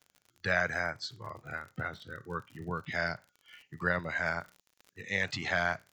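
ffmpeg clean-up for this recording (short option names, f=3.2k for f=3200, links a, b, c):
-af "adeclick=t=4,agate=range=-21dB:threshold=-64dB"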